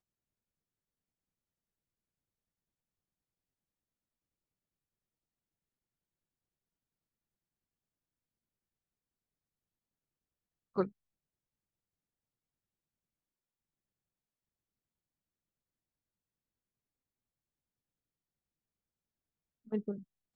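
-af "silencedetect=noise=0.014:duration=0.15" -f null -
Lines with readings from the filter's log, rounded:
silence_start: 0.00
silence_end: 10.77 | silence_duration: 10.77
silence_start: 10.87
silence_end: 19.72 | silence_duration: 8.86
silence_start: 19.96
silence_end: 20.36 | silence_duration: 0.40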